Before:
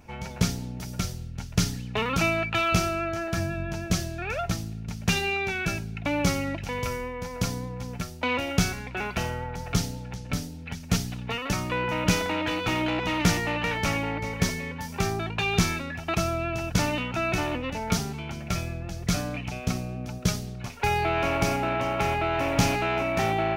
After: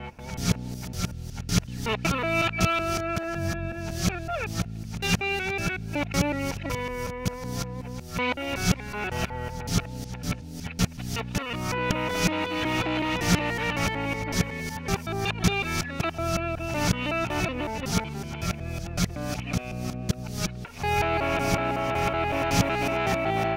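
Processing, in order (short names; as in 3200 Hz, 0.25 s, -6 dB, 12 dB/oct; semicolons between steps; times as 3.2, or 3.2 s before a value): local time reversal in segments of 0.186 s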